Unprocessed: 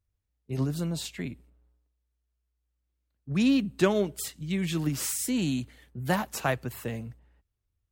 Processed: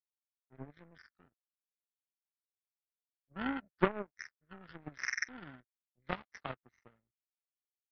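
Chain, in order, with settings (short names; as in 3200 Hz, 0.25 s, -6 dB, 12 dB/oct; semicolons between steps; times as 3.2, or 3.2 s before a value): nonlinear frequency compression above 1100 Hz 4:1; power-law curve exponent 3; gain +1 dB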